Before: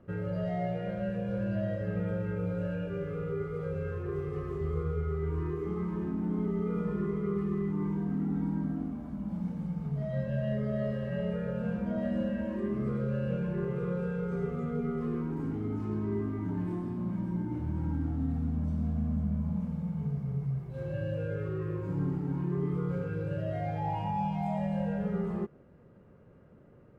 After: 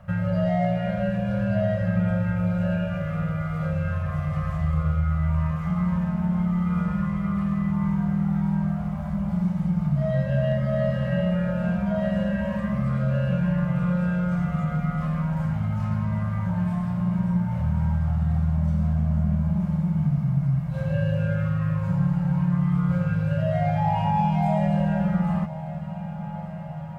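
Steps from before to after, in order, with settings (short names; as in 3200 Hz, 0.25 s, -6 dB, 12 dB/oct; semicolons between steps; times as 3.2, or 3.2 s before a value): elliptic band-stop 190–590 Hz, stop band 40 dB; in parallel at +1 dB: compressor, threshold -40 dBFS, peak gain reduction 11.5 dB; on the sum: added harmonics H 4 -33 dB, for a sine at -21 dBFS; diffused feedback echo 1.153 s, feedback 76%, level -15 dB; gain +7.5 dB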